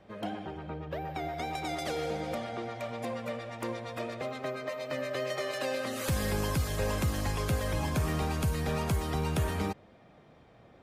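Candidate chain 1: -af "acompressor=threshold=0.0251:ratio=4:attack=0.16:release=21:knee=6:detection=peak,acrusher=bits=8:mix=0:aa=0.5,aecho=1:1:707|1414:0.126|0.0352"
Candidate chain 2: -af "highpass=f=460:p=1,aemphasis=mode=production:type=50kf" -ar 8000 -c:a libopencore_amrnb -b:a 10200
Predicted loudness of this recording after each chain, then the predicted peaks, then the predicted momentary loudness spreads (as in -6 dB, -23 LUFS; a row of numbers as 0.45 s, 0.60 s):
-38.0 LUFS, -38.5 LUFS; -27.5 dBFS, -23.0 dBFS; 5 LU, 5 LU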